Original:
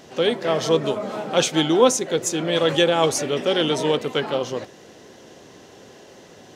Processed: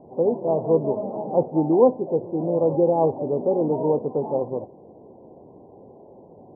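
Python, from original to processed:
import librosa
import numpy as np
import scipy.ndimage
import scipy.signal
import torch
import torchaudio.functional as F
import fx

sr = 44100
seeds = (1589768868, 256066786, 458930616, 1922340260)

y = scipy.signal.sosfilt(scipy.signal.butter(12, 950.0, 'lowpass', fs=sr, output='sos'), x)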